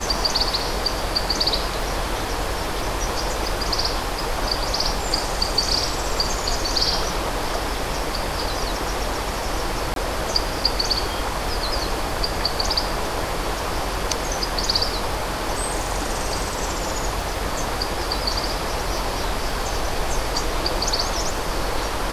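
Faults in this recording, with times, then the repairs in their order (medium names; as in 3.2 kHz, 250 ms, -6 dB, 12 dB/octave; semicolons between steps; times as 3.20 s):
crackle 27 per s -30 dBFS
9.94–9.96 s: dropout 22 ms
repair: de-click; interpolate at 9.94 s, 22 ms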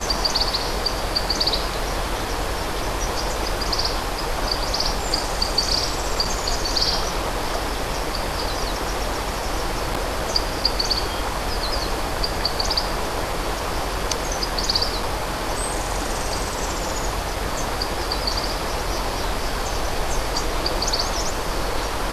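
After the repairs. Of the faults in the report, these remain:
nothing left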